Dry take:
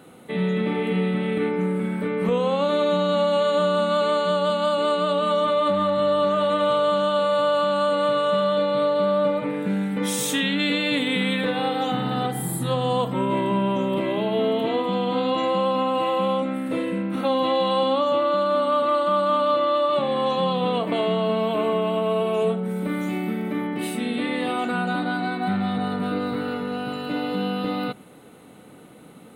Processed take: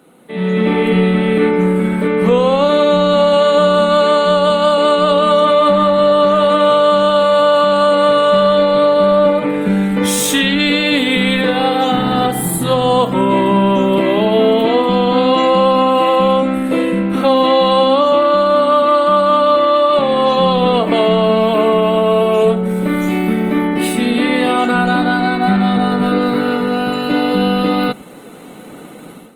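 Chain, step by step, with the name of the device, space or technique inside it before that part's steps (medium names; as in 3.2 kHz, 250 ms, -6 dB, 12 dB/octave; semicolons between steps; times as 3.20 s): video call (high-pass 150 Hz 24 dB/octave; level rider gain up to 13 dB; Opus 24 kbps 48 kHz)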